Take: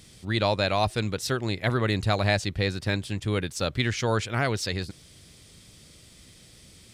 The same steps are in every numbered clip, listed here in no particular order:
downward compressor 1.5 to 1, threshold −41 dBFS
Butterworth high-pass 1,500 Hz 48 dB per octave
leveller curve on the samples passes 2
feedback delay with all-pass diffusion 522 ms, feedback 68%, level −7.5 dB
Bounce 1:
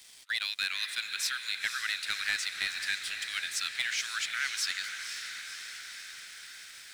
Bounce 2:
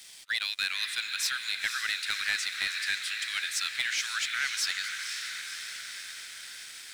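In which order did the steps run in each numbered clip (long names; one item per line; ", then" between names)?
Butterworth high-pass, then leveller curve on the samples, then downward compressor, then feedback delay with all-pass diffusion
Butterworth high-pass, then downward compressor, then feedback delay with all-pass diffusion, then leveller curve on the samples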